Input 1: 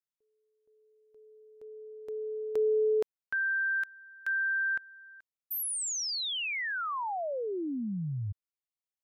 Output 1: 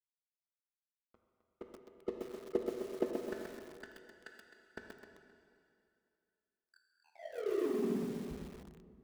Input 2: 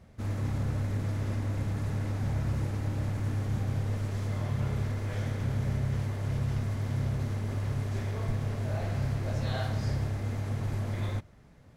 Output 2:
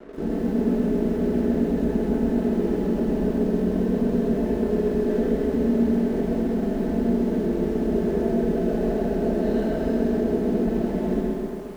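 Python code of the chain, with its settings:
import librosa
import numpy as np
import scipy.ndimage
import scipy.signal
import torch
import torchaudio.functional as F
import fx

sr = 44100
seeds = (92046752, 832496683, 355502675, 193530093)

p1 = fx.highpass(x, sr, hz=62.0, slope=6)
p2 = fx.spec_gate(p1, sr, threshold_db=-10, keep='weak')
p3 = fx.peak_eq(p2, sr, hz=350.0, db=14.0, octaves=0.42)
p4 = p3 + 0.69 * np.pad(p3, (int(4.6 * sr / 1000.0), 0))[:len(p3)]
p5 = fx.over_compress(p4, sr, threshold_db=-47.0, ratio=-1.0)
p6 = p4 + (p5 * librosa.db_to_amplitude(0.5))
p7 = scipy.signal.lfilter(np.full(38, 1.0 / 38), 1.0, p6)
p8 = np.sign(p7) * np.maximum(np.abs(p7) - 10.0 ** (-54.5 / 20.0), 0.0)
p9 = p8 + fx.echo_feedback(p8, sr, ms=261, feedback_pct=23, wet_db=-11.0, dry=0)
p10 = fx.rev_plate(p9, sr, seeds[0], rt60_s=2.5, hf_ratio=1.0, predelay_ms=0, drr_db=2.0)
p11 = fx.echo_crushed(p10, sr, ms=128, feedback_pct=35, bits=10, wet_db=-4.0)
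y = p11 * librosa.db_to_amplitude(9.0)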